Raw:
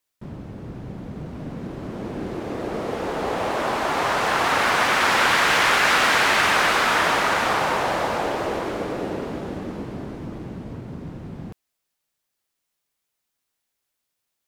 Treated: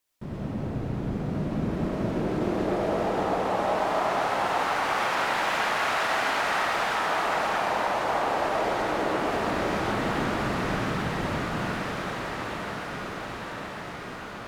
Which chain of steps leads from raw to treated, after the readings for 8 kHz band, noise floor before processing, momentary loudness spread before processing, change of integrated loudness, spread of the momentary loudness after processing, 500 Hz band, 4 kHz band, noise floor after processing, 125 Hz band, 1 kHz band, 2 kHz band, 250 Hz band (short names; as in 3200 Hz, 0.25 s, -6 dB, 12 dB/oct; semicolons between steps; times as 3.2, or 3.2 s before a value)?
-9.5 dB, -80 dBFS, 19 LU, -6.5 dB, 9 LU, -1.0 dB, -8.5 dB, -38 dBFS, +2.0 dB, -3.0 dB, -7.0 dB, +0.5 dB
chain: diffused feedback echo 0.987 s, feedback 71%, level -12 dB; dynamic EQ 780 Hz, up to +6 dB, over -35 dBFS, Q 1.9; compressor 12:1, threshold -28 dBFS, peak gain reduction 15.5 dB; digital reverb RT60 1.7 s, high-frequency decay 0.5×, pre-delay 45 ms, DRR -3.5 dB